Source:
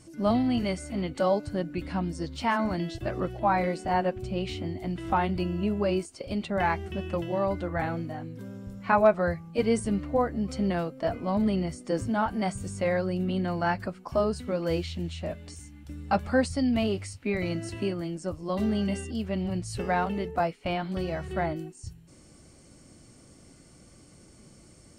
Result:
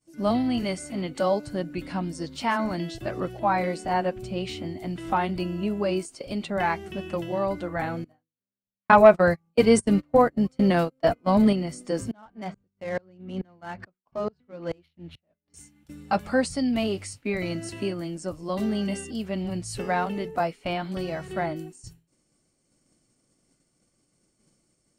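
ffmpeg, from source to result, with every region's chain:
ffmpeg -i in.wav -filter_complex "[0:a]asettb=1/sr,asplit=3[link_01][link_02][link_03];[link_01]atrim=end=8.044[link_04];[link_02]atrim=start=8.04:end=11.53,asetpts=PTS-STARTPTS,afade=type=in:duration=0.004:curve=qsin,afade=type=out:start_time=3.486:duration=0.004:curve=qsin,agate=range=-31dB:threshold=-31dB:ratio=16:release=100:detection=peak,acontrast=65[link_05];[link_03]atrim=start=11.526[link_06];[link_04][link_05]acrossfade=duration=0.004:curve1=hsin:curve2=qsin[link_07];[link_07][link_06]acrossfade=duration=0.004:curve1=qsin:curve2=hsin,asettb=1/sr,asplit=3[link_08][link_09][link_10];[link_08]atrim=end=12.114[link_11];[link_09]atrim=start=12.11:end=15.54,asetpts=PTS-STARTPTS,afade=type=in:duration=0.004:curve=qsin,afade=type=out:start_time=3.426:duration=0.004:curve=qsin,lowpass=5100,adynamicsmooth=sensitivity=7:basefreq=2300,aeval=exprs='val(0)*pow(10,-32*if(lt(mod(-2.3*n/s,1),2*abs(-2.3)/1000),1-mod(-2.3*n/s,1)/(2*abs(-2.3)/1000),(mod(-2.3*n/s,1)-2*abs(-2.3)/1000)/(1-2*abs(-2.3)/1000))/20)':channel_layout=same[link_12];[link_10]atrim=start=15.536[link_13];[link_11][link_12]acrossfade=duration=0.004:curve1=hsin:curve2=qsin[link_14];[link_14][link_13]acrossfade=duration=0.004:curve1=qsin:curve2=hsin,equalizer=frequency=74:width_type=o:width=0.71:gain=-13,agate=range=-33dB:threshold=-43dB:ratio=3:detection=peak,highshelf=frequency=5600:gain=5,volume=1dB" out.wav

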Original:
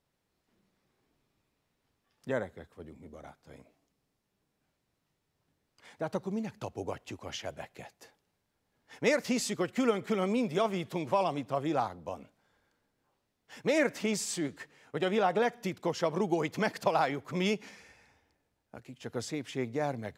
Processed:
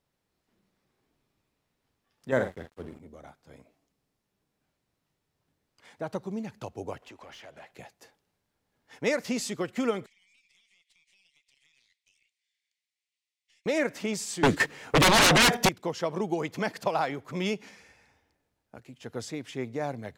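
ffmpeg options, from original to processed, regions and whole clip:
ffmpeg -i in.wav -filter_complex "[0:a]asettb=1/sr,asplit=3[link_01][link_02][link_03];[link_01]atrim=end=2.324[link_04];[link_02]atrim=start=2.32:end=3,asetpts=PTS-STARTPTS,afade=type=in:duration=0.004:curve=qsin,afade=type=out:start_time=0.676:duration=0.004:curve=qsin,asplit=2[link_05][link_06];[link_06]adelay=47,volume=-7.5dB[link_07];[link_05][link_07]amix=inputs=2:normalize=0,atrim=end_sample=29988,acontrast=79,aeval=exprs='sgn(val(0))*max(abs(val(0))-0.00299,0)':channel_layout=same[link_08];[link_03]atrim=start=2.996[link_09];[link_04][link_08]acrossfade=duration=0.004:curve1=hsin:curve2=qsin[link_10];[link_10][link_09]acrossfade=duration=0.004:curve1=qsin:curve2=hsin,asettb=1/sr,asplit=3[link_11][link_12][link_13];[link_11]atrim=end=7.024[link_14];[link_12]atrim=start=7.02:end=7.71,asetpts=PTS-STARTPTS,afade=type=in:duration=0.004:curve=qsin,afade=type=out:start_time=0.686:duration=0.004:curve=qsin,acompressor=threshold=-52dB:ratio=3:attack=3.2:release=140:knee=1:detection=peak,asplit=2[link_15][link_16];[link_16]highpass=frequency=720:poles=1,volume=19dB,asoftclip=type=tanh:threshold=-38dB[link_17];[link_15][link_17]amix=inputs=2:normalize=0,lowpass=frequency=2700:poles=1,volume=-6dB[link_18];[link_13]atrim=start=7.706[link_19];[link_14][link_18]acrossfade=duration=0.004:curve1=hsin:curve2=qsin[link_20];[link_20][link_19]acrossfade=duration=0.004:curve1=qsin:curve2=hsin,asettb=1/sr,asplit=3[link_21][link_22][link_23];[link_21]atrim=end=10.064[link_24];[link_22]atrim=start=10.06:end=13.66,asetpts=PTS-STARTPTS,afade=type=in:duration=0.004:curve=qsin,afade=type=out:start_time=3.596:duration=0.004:curve=qsin,asuperpass=centerf=4600:order=20:qfactor=0.59,acompressor=threshold=-59dB:ratio=10:attack=3.2:release=140:knee=1:detection=peak,aeval=exprs='(tanh(251*val(0)+0.65)-tanh(0.65))/251':channel_layout=same[link_25];[link_23]atrim=start=13.656[link_26];[link_24][link_25]acrossfade=duration=0.004:curve1=hsin:curve2=qsin[link_27];[link_27][link_26]acrossfade=duration=0.004:curve1=qsin:curve2=hsin,asettb=1/sr,asplit=3[link_28][link_29][link_30];[link_28]atrim=end=14.434[link_31];[link_29]atrim=start=14.43:end=15.69,asetpts=PTS-STARTPTS,afade=type=in:duration=0.004:curve=qsin,afade=type=out:start_time=1.256:duration=0.004:curve=qsin,agate=range=-8dB:threshold=-51dB:ratio=16:release=100:detection=peak,aeval=exprs='0.168*sin(PI/2*8.91*val(0)/0.168)':channel_layout=same[link_32];[link_30]atrim=start=15.686[link_33];[link_31][link_32]acrossfade=duration=0.004:curve1=hsin:curve2=qsin[link_34];[link_34][link_33]acrossfade=duration=0.004:curve1=qsin:curve2=hsin" out.wav

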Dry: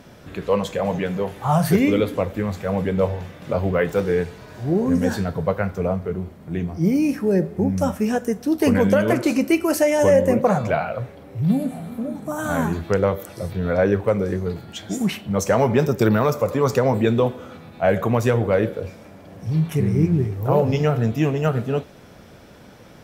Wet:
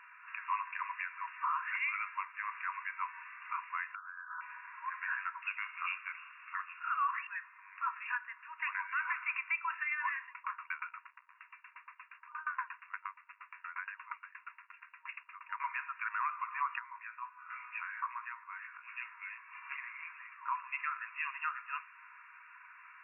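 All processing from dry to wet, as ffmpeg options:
ffmpeg -i in.wav -filter_complex "[0:a]asettb=1/sr,asplit=3[link_01][link_02][link_03];[link_01]atrim=end=3.954[link_04];[link_02]atrim=start=3.95:end=4.41,asetpts=PTS-STARTPTS,afade=type=in:duration=0.004:curve=qsin,afade=type=out:start_time=0.456:duration=0.004:curve=qsin,asuperstop=centerf=2500:order=12:qfactor=1.1,equalizer=frequency=1400:width_type=o:width=1.3:gain=12,acompressor=threshold=-32dB:ratio=8:attack=3.2:release=140:knee=1:detection=peak[link_05];[link_03]atrim=start=4.406[link_06];[link_04][link_05]acrossfade=duration=0.004:curve1=hsin:curve2=qsin[link_07];[link_07][link_06]acrossfade=duration=0.004:curve1=qsin:curve2=hsin,asettb=1/sr,asplit=3[link_08][link_09][link_10];[link_08]atrim=end=5.424[link_11];[link_09]atrim=start=5.42:end=7.27,asetpts=PTS-STARTPTS,afade=type=in:duration=0.004:curve=qsin,afade=type=out:start_time=1.846:duration=0.004:curve=qsin,equalizer=frequency=2600:width_type=o:width=0.92:gain=14.5,acrusher=bits=8:mode=log:mix=0:aa=0.000001,lowpass=frequency=3100:width_type=q:width=0.5098,lowpass=frequency=3100:width_type=q:width=0.6013,lowpass=frequency=3100:width_type=q:width=0.9,lowpass=frequency=3100:width_type=q:width=2.563,afreqshift=-3600[link_12];[link_10]atrim=start=7.266[link_13];[link_11][link_12]acrossfade=duration=0.004:curve1=hsin:curve2=qsin[link_14];[link_14][link_13]acrossfade=duration=0.004:curve1=qsin:curve2=hsin,asettb=1/sr,asplit=3[link_15][link_16][link_17];[link_15]atrim=end=10.234[link_18];[link_16]atrim=start=10.23:end=15.6,asetpts=PTS-STARTPTS,afade=type=in:duration=0.004:curve=qsin,afade=type=out:start_time=5.366:duration=0.004:curve=qsin,acrusher=bits=5:mix=0:aa=0.5,aeval=exprs='val(0)*pow(10,-28*if(lt(mod(8.5*n/s,1),2*abs(8.5)/1000),1-mod(8.5*n/s,1)/(2*abs(8.5)/1000),(mod(8.5*n/s,1)-2*abs(8.5)/1000)/(1-2*abs(8.5)/1000))/20)':channel_layout=same[link_19];[link_17]atrim=start=15.596[link_20];[link_18][link_19]acrossfade=duration=0.004:curve1=hsin:curve2=qsin[link_21];[link_21][link_20]acrossfade=duration=0.004:curve1=qsin:curve2=hsin,asettb=1/sr,asplit=3[link_22][link_23][link_24];[link_22]atrim=end=16.794[link_25];[link_23]atrim=start=16.79:end=19.5,asetpts=PTS-STARTPTS,afade=type=in:duration=0.004:curve=qsin,afade=type=out:start_time=2.706:duration=0.004:curve=qsin,asplit=2[link_26][link_27];[link_27]adelay=17,volume=-3dB[link_28];[link_26][link_28]amix=inputs=2:normalize=0,atrim=end_sample=119511,acrossover=split=260|2700[link_29][link_30][link_31];[link_29]adelay=170[link_32];[link_31]adelay=710[link_33];[link_32][link_30][link_33]amix=inputs=3:normalize=0,atrim=end_sample=119511,acompressor=threshold=-26dB:ratio=12:attack=3.2:release=140:knee=1:detection=peak[link_34];[link_24]atrim=start=19.496[link_35];[link_25][link_34]acrossfade=duration=0.004:curve1=hsin:curve2=qsin[link_36];[link_36][link_35]acrossfade=duration=0.004:curve1=qsin:curve2=hsin,afftfilt=real='re*between(b*sr/4096,940,2800)':imag='im*between(b*sr/4096,940,2800)':win_size=4096:overlap=0.75,alimiter=level_in=1dB:limit=-24dB:level=0:latency=1:release=336,volume=-1dB" out.wav

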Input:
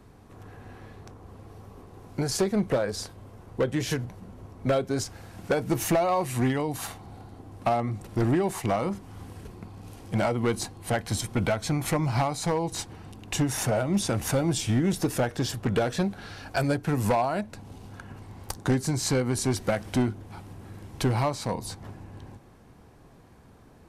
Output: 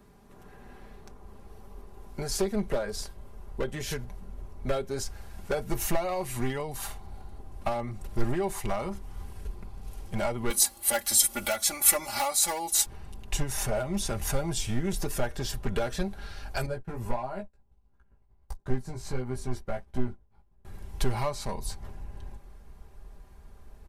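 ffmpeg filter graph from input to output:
ffmpeg -i in.wav -filter_complex "[0:a]asettb=1/sr,asplit=3[link_01][link_02][link_03];[link_01]atrim=end=10.504[link_04];[link_02]atrim=start=10.5:end=12.86,asetpts=PTS-STARTPTS,afade=type=in:duration=0.004:curve=qsin,afade=type=out:start_time=2.356:duration=0.004:curve=qsin,highpass=frequency=380:poles=1,aemphasis=mode=production:type=75fm,aecho=1:1:3.5:0.95,atrim=end_sample=104076[link_05];[link_03]atrim=start=12.856[link_06];[link_04][link_05]acrossfade=duration=0.004:curve1=hsin:curve2=qsin[link_07];[link_07][link_06]acrossfade=duration=0.004:curve1=qsin:curve2=hsin,asettb=1/sr,asplit=3[link_08][link_09][link_10];[link_08]atrim=end=16.664[link_11];[link_09]atrim=start=16.66:end=20.65,asetpts=PTS-STARTPTS,afade=type=in:duration=0.004:curve=qsin,afade=type=out:start_time=3.986:duration=0.004:curve=qsin,agate=range=-33dB:threshold=-31dB:ratio=3:release=100:detection=peak,highshelf=frequency=2300:gain=-11.5,flanger=delay=15.5:depth=2:speed=1.5[link_12];[link_10]atrim=start=20.646[link_13];[link_11][link_12]acrossfade=duration=0.004:curve1=hsin:curve2=qsin[link_14];[link_14][link_13]acrossfade=duration=0.004:curve1=qsin:curve2=hsin,highshelf=frequency=12000:gain=8.5,aecho=1:1:5:0.62,asubboost=boost=11.5:cutoff=54,volume=-5dB" out.wav

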